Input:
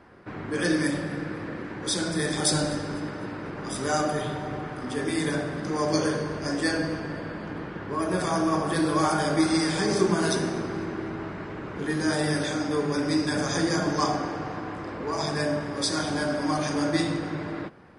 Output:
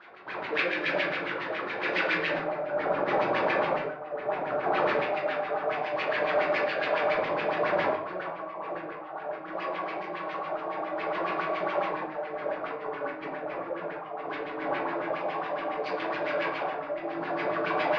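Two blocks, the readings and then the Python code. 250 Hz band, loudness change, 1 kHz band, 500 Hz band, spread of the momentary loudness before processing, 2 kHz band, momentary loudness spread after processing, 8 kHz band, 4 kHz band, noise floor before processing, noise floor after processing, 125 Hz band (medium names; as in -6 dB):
-12.0 dB, -2.5 dB, +1.0 dB, +0.5 dB, 11 LU, +1.5 dB, 9 LU, under -30 dB, -8.0 dB, -37 dBFS, -39 dBFS, -16.0 dB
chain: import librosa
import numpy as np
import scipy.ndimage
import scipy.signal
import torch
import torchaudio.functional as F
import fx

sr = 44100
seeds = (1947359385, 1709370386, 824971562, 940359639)

y = scipy.signal.medfilt(x, 25)
y = fx.filter_lfo_bandpass(y, sr, shape='square', hz=0.21, low_hz=1000.0, high_hz=3500.0, q=0.85)
y = fx.dynamic_eq(y, sr, hz=3000.0, q=0.95, threshold_db=-53.0, ratio=4.0, max_db=6)
y = fx.echo_diffused(y, sr, ms=1463, feedback_pct=58, wet_db=-4.5)
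y = fx.over_compress(y, sr, threshold_db=-43.0, ratio=-1.0)
y = fx.peak_eq(y, sr, hz=5000.0, db=11.5, octaves=1.2)
y = fx.filter_lfo_lowpass(y, sr, shape='sine', hz=7.2, low_hz=570.0, high_hz=2300.0, q=6.4)
y = fx.room_shoebox(y, sr, seeds[0], volume_m3=36.0, walls='mixed', distance_m=0.78)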